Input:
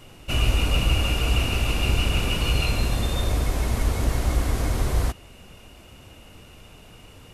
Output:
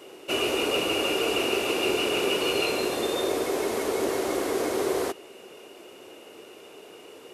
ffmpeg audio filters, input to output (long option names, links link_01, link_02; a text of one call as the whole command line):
ffmpeg -i in.wav -af "highpass=frequency=390:width_type=q:width=3.9" out.wav